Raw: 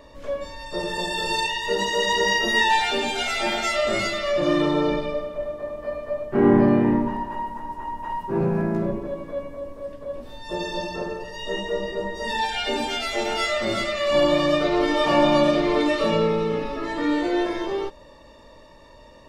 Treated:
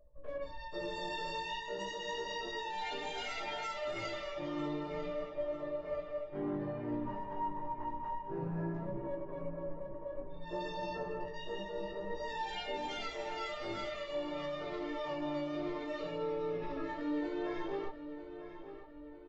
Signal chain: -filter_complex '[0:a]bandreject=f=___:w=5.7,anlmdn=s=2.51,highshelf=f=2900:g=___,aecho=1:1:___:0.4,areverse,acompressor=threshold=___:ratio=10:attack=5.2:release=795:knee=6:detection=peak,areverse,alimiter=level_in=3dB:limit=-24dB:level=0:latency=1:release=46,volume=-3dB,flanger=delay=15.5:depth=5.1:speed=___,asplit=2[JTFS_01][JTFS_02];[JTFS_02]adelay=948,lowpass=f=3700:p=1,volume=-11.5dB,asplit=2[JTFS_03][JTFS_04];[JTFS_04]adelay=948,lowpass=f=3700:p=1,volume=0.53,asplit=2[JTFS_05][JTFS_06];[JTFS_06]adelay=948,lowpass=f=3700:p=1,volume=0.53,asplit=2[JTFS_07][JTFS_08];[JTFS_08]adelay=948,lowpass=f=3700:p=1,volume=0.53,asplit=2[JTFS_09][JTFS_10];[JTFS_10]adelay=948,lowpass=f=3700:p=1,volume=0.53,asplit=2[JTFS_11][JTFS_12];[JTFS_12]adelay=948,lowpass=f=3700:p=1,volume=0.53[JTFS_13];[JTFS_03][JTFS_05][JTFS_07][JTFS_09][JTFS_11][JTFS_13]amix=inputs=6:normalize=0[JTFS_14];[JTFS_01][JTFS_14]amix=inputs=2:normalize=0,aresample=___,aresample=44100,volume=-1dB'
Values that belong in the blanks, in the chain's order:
220, -4.5, 6.6, -29dB, 0.55, 16000